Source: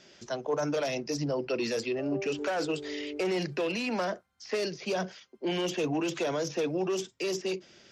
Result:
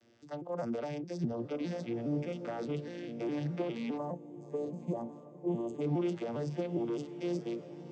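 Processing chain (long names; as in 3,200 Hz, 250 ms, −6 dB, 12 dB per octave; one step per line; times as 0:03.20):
vocoder with an arpeggio as carrier major triad, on A#2, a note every 205 ms
feedback delay with all-pass diffusion 1,127 ms, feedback 40%, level −13 dB
gain on a spectral selection 0:03.98–0:05.81, 1,200–6,200 Hz −17 dB
level −4 dB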